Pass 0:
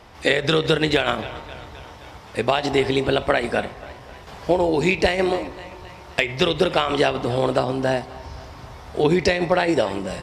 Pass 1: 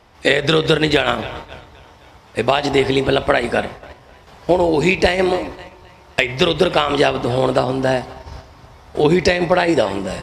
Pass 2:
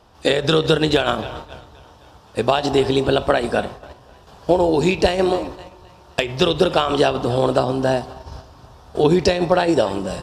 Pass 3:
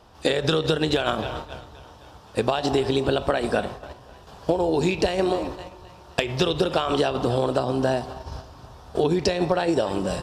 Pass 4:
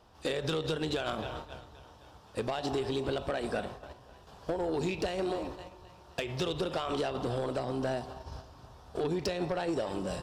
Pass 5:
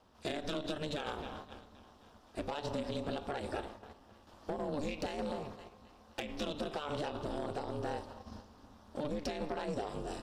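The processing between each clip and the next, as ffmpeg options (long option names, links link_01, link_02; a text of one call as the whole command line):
ffmpeg -i in.wav -af "agate=range=-8dB:threshold=-35dB:ratio=16:detection=peak,volume=4dB" out.wav
ffmpeg -i in.wav -af "equalizer=frequency=2100:width_type=o:width=0.38:gain=-13.5,volume=-1dB" out.wav
ffmpeg -i in.wav -af "acompressor=threshold=-18dB:ratio=6" out.wav
ffmpeg -i in.wav -af "asoftclip=type=tanh:threshold=-16.5dB,volume=-8dB" out.wav
ffmpeg -i in.wav -af "aeval=exprs='val(0)*sin(2*PI*150*n/s)':channel_layout=same,volume=-2.5dB" out.wav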